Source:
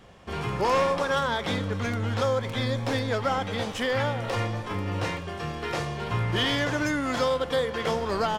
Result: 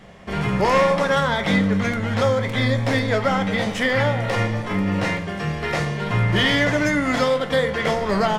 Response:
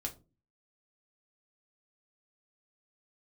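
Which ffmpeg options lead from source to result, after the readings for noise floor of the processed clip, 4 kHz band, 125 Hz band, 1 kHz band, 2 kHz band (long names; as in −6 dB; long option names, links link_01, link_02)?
−29 dBFS, +5.0 dB, +7.0 dB, +5.0 dB, +8.5 dB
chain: -filter_complex "[0:a]equalizer=frequency=200:width_type=o:width=0.33:gain=9,equalizer=frequency=630:width_type=o:width=0.33:gain=5,equalizer=frequency=2000:width_type=o:width=0.33:gain=8,asplit=2[link_01][link_02];[1:a]atrim=start_sample=2205,asetrate=24696,aresample=44100[link_03];[link_02][link_03]afir=irnorm=-1:irlink=0,volume=-5.5dB[link_04];[link_01][link_04]amix=inputs=2:normalize=0"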